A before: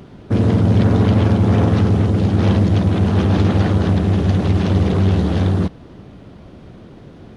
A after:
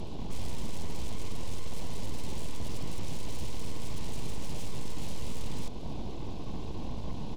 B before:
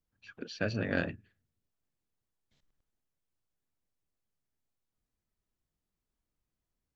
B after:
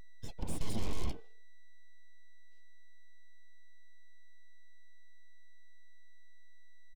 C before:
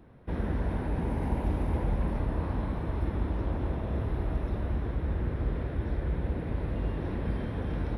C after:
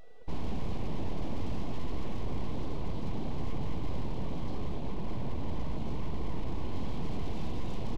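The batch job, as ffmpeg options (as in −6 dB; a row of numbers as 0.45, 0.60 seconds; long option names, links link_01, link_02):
-filter_complex "[0:a]acrossover=split=160[link_01][link_02];[link_02]acontrast=78[link_03];[link_01][link_03]amix=inputs=2:normalize=0,aexciter=amount=3.8:drive=5.3:freq=2900,acrossover=split=240|600|1300[link_04][link_05][link_06][link_07];[link_04]acompressor=threshold=-14dB:ratio=4[link_08];[link_05]acompressor=threshold=-25dB:ratio=4[link_09];[link_06]acompressor=threshold=-36dB:ratio=4[link_10];[link_07]acompressor=threshold=-27dB:ratio=4[link_11];[link_08][link_09][link_10][link_11]amix=inputs=4:normalize=0,afftfilt=real='re*lt(hypot(re,im),0.562)':imag='im*lt(hypot(re,im),0.562)':win_size=1024:overlap=0.75,bass=frequency=250:gain=6,treble=frequency=4000:gain=15,asplit=2[link_12][link_13];[link_13]adelay=164,lowpass=frequency=1000:poles=1,volume=-23.5dB,asplit=2[link_14][link_15];[link_15]adelay=164,lowpass=frequency=1000:poles=1,volume=0.27[link_16];[link_12][link_14][link_16]amix=inputs=3:normalize=0,afftdn=noise_reduction=14:noise_floor=-41,asplit=3[link_17][link_18][link_19];[link_17]bandpass=frequency=530:width_type=q:width=8,volume=0dB[link_20];[link_18]bandpass=frequency=1840:width_type=q:width=8,volume=-6dB[link_21];[link_19]bandpass=frequency=2480:width_type=q:width=8,volume=-9dB[link_22];[link_20][link_21][link_22]amix=inputs=3:normalize=0,aresample=16000,asoftclip=type=hard:threshold=-39dB,aresample=44100,aeval=exprs='val(0)+0.00126*sin(2*PI*980*n/s)':channel_layout=same,aeval=exprs='abs(val(0))':channel_layout=same,firequalizer=gain_entry='entry(220,0);entry(1400,-24);entry(2600,-15)':delay=0.05:min_phase=1,volume=17dB"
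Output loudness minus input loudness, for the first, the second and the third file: −25.0, −8.0, −6.0 LU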